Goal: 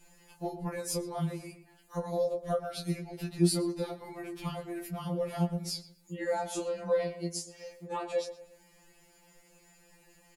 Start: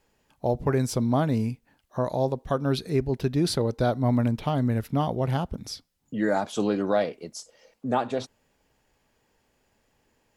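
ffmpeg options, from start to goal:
-filter_complex "[0:a]equalizer=f=9700:w=1:g=9,acompressor=threshold=0.00447:ratio=2,asplit=2[s0][s1];[s1]adelay=17,volume=0.596[s2];[s0][s2]amix=inputs=2:normalize=0,asplit=2[s3][s4];[s4]adelay=119,lowpass=f=2400:p=1,volume=0.251,asplit=2[s5][s6];[s6]adelay=119,lowpass=f=2400:p=1,volume=0.39,asplit=2[s7][s8];[s8]adelay=119,lowpass=f=2400:p=1,volume=0.39,asplit=2[s9][s10];[s10]adelay=119,lowpass=f=2400:p=1,volume=0.39[s11];[s5][s7][s9][s11]amix=inputs=4:normalize=0[s12];[s3][s12]amix=inputs=2:normalize=0,afftfilt=real='re*2.83*eq(mod(b,8),0)':imag='im*2.83*eq(mod(b,8),0)':win_size=2048:overlap=0.75,volume=2.37"

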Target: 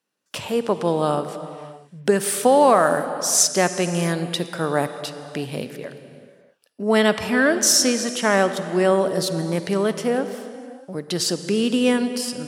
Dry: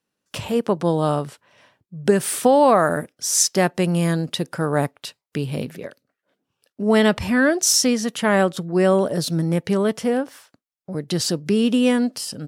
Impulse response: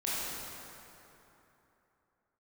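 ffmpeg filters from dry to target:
-filter_complex "[0:a]highpass=f=290:p=1,asplit=2[s0][s1];[1:a]atrim=start_sample=2205,afade=t=out:st=0.39:d=0.01,atrim=end_sample=17640,asetrate=22932,aresample=44100[s2];[s1][s2]afir=irnorm=-1:irlink=0,volume=0.1[s3];[s0][s3]amix=inputs=2:normalize=0"

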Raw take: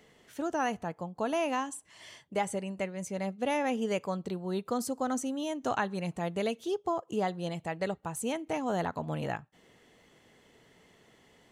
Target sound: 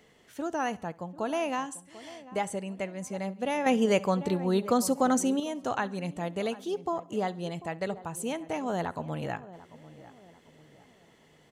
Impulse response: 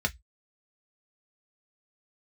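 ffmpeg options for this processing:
-filter_complex "[0:a]asplit=2[s0][s1];[s1]adelay=743,lowpass=f=1200:p=1,volume=0.158,asplit=2[s2][s3];[s3]adelay=743,lowpass=f=1200:p=1,volume=0.44,asplit=2[s4][s5];[s5]adelay=743,lowpass=f=1200:p=1,volume=0.44,asplit=2[s6][s7];[s7]adelay=743,lowpass=f=1200:p=1,volume=0.44[s8];[s2][s4][s6][s8]amix=inputs=4:normalize=0[s9];[s0][s9]amix=inputs=2:normalize=0,asettb=1/sr,asplit=3[s10][s11][s12];[s10]atrim=end=3.664[s13];[s11]atrim=start=3.66:end=5.4,asetpts=PTS-STARTPTS,afade=t=in:d=0.004:c=qsin,afade=t=out:st=1.736:d=0.004:c=qsin,acontrast=81[s14];[s12]atrim=start=5.396[s15];[s13][s14]acrossfade=d=0.004:c1=hsin:c2=qsin[s16];[s16][s15]acrossfade=d=0.004:c1=qsin:c2=hsin,asplit=2[s17][s18];[s18]aecho=0:1:68|136|204:0.075|0.036|0.0173[s19];[s17][s19]amix=inputs=2:normalize=0"

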